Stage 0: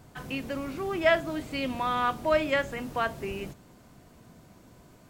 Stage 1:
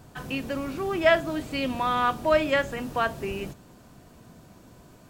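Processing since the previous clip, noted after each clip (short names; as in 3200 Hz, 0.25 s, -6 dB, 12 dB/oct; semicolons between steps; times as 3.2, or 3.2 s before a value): notch 2100 Hz, Q 15; gain +3 dB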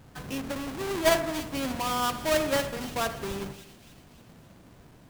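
half-waves squared off; on a send: split-band echo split 2300 Hz, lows 81 ms, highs 0.286 s, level -11.5 dB; on the sum: gain -7.5 dB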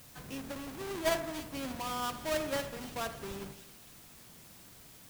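added noise white -48 dBFS; gain -8 dB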